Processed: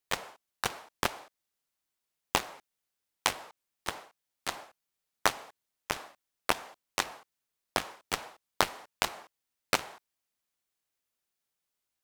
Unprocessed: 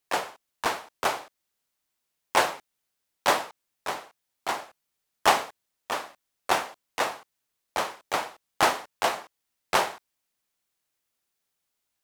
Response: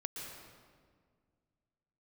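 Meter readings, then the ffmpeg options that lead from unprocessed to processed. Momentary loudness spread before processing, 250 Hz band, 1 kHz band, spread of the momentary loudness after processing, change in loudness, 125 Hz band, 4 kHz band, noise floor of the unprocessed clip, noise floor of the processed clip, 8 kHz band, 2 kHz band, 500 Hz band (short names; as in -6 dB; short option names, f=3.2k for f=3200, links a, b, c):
16 LU, -4.0 dB, -8.5 dB, 17 LU, -5.5 dB, +0.5 dB, -3.5 dB, -81 dBFS, under -85 dBFS, -2.5 dB, -5.5 dB, -8.5 dB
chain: -af "acompressor=threshold=-27dB:ratio=8,aeval=exprs='0.316*(cos(1*acos(clip(val(0)/0.316,-1,1)))-cos(1*PI/2))+0.0562*(cos(7*acos(clip(val(0)/0.316,-1,1)))-cos(7*PI/2))':c=same,volume=7dB"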